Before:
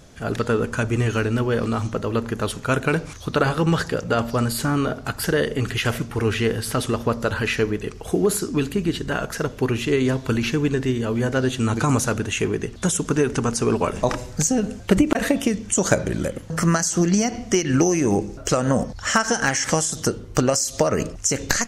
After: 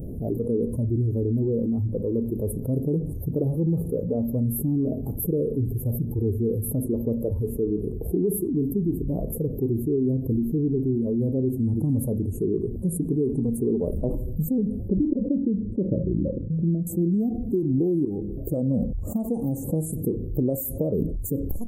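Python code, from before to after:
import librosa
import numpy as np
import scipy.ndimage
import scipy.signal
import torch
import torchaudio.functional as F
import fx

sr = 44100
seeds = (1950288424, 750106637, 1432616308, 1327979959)

y = fx.ellip_lowpass(x, sr, hz=590.0, order=4, stop_db=40, at=(14.88, 16.87))
y = fx.edit(y, sr, fx.fade_in_from(start_s=18.05, length_s=0.67, floor_db=-19.0), tone=tone)
y = fx.noise_reduce_blind(y, sr, reduce_db=10)
y = scipy.signal.sosfilt(scipy.signal.cheby2(4, 70, [1500.0, 5500.0], 'bandstop', fs=sr, output='sos'), y)
y = fx.env_flatten(y, sr, amount_pct=70)
y = y * librosa.db_to_amplitude(-7.0)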